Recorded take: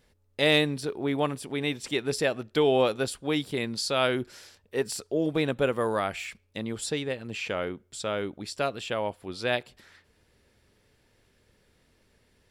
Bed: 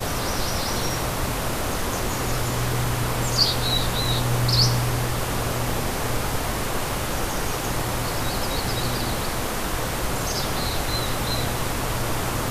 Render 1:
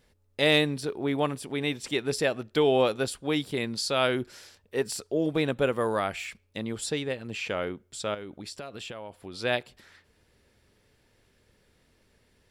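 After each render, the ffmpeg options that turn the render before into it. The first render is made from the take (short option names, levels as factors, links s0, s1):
-filter_complex "[0:a]asettb=1/sr,asplit=3[s0][s1][s2];[s0]atrim=end=8.144[s3];[s1]atrim=start=8.14:end=9.35,asetpts=PTS-STARTPTS,afade=t=in:d=0.004:c=qsin,afade=t=out:st=1.206:d=0.004:c=qsin,acompressor=threshold=0.0178:ratio=12:attack=3.2:release=140:knee=1:detection=peak[s4];[s2]atrim=start=9.346[s5];[s3][s4]acrossfade=d=0.004:c1=hsin:c2=qsin[s6];[s6][s5]acrossfade=d=0.004:c1=qsin:c2=hsin"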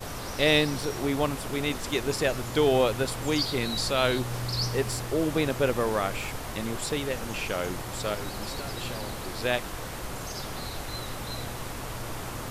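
-filter_complex "[1:a]volume=0.299[s0];[0:a][s0]amix=inputs=2:normalize=0"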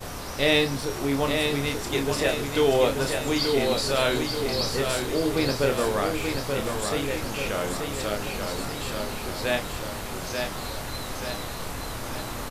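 -filter_complex "[0:a]asplit=2[s0][s1];[s1]adelay=29,volume=0.501[s2];[s0][s2]amix=inputs=2:normalize=0,asplit=2[s3][s4];[s4]aecho=0:1:883|1766|2649|3532|4415|5298:0.562|0.287|0.146|0.0746|0.038|0.0194[s5];[s3][s5]amix=inputs=2:normalize=0"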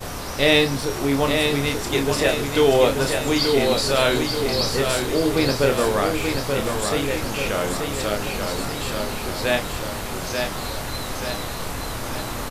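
-af "volume=1.68"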